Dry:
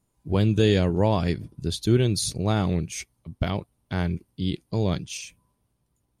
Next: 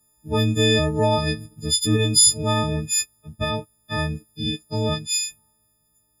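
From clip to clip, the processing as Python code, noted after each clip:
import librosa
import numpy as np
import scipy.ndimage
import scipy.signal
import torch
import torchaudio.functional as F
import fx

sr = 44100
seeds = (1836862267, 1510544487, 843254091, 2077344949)

y = fx.freq_snap(x, sr, grid_st=6)
y = fx.high_shelf(y, sr, hz=11000.0, db=4.0)
y = fx.notch(y, sr, hz=2400.0, q=13.0)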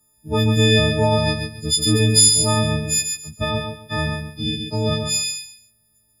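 y = fx.echo_feedback(x, sr, ms=137, feedback_pct=23, wet_db=-5.5)
y = F.gain(torch.from_numpy(y), 1.5).numpy()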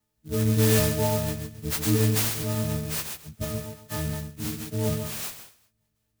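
y = fx.rotary_switch(x, sr, hz=0.9, then_hz=5.0, switch_at_s=3.52)
y = fx.air_absorb(y, sr, metres=68.0)
y = fx.clock_jitter(y, sr, seeds[0], jitter_ms=0.11)
y = F.gain(torch.from_numpy(y), -4.5).numpy()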